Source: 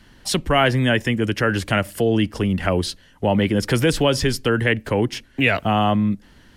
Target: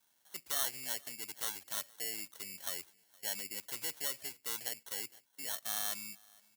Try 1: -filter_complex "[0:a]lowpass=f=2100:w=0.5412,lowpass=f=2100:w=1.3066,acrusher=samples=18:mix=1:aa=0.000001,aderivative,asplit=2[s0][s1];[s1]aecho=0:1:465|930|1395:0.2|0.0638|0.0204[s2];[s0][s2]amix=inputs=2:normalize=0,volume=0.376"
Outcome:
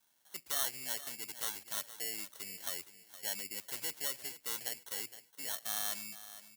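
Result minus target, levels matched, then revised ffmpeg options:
echo-to-direct +11.5 dB
-filter_complex "[0:a]lowpass=f=2100:w=0.5412,lowpass=f=2100:w=1.3066,acrusher=samples=18:mix=1:aa=0.000001,aderivative,asplit=2[s0][s1];[s1]aecho=0:1:465|930:0.0531|0.017[s2];[s0][s2]amix=inputs=2:normalize=0,volume=0.376"

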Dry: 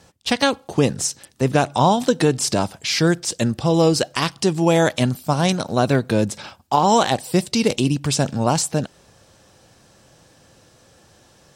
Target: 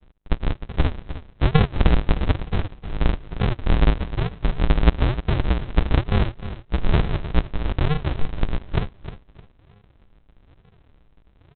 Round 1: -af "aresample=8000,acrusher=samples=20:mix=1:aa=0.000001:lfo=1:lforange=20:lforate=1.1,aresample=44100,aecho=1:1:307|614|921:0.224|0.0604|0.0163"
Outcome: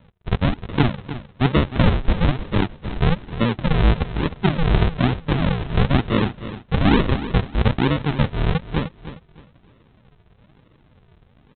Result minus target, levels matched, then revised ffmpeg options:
decimation with a swept rate: distortion -26 dB
-af "aresample=8000,acrusher=samples=51:mix=1:aa=0.000001:lfo=1:lforange=51:lforate=1.1,aresample=44100,aecho=1:1:307|614|921:0.224|0.0604|0.0163"

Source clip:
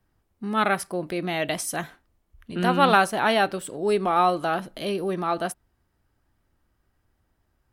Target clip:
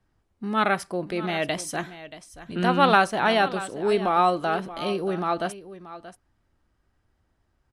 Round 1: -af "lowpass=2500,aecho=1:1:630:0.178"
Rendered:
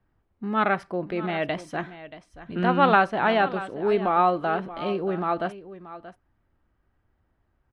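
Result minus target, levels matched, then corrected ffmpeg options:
8 kHz band -17.5 dB
-af "lowpass=8100,aecho=1:1:630:0.178"

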